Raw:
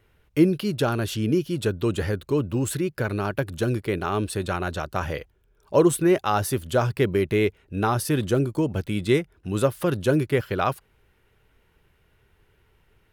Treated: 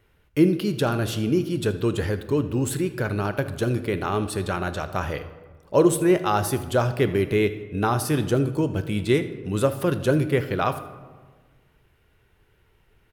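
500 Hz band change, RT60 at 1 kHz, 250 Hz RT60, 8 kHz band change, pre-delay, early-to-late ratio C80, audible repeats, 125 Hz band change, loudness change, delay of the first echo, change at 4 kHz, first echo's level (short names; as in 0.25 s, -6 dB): +0.5 dB, 1.3 s, 1.7 s, 0.0 dB, 11 ms, 14.5 dB, 1, +0.5 dB, +0.5 dB, 79 ms, +0.5 dB, -18.5 dB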